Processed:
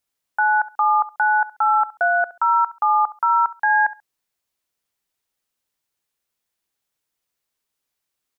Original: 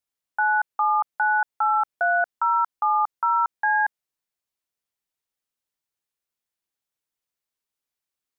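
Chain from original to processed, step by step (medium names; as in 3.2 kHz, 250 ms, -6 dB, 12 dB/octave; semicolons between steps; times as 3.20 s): peak limiter -18 dBFS, peak gain reduction 3.5 dB; feedback delay 68 ms, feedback 21%, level -18 dB; trim +7 dB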